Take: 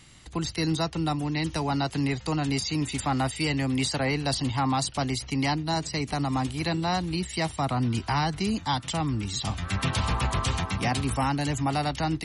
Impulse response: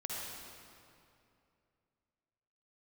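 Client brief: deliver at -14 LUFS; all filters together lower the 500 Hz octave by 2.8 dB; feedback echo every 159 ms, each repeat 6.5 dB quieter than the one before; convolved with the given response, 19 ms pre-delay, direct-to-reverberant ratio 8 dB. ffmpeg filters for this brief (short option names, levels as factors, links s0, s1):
-filter_complex "[0:a]equalizer=f=500:t=o:g=-4,aecho=1:1:159|318|477|636|795|954:0.473|0.222|0.105|0.0491|0.0231|0.0109,asplit=2[s0][s1];[1:a]atrim=start_sample=2205,adelay=19[s2];[s1][s2]afir=irnorm=-1:irlink=0,volume=0.316[s3];[s0][s3]amix=inputs=2:normalize=0,volume=4.22"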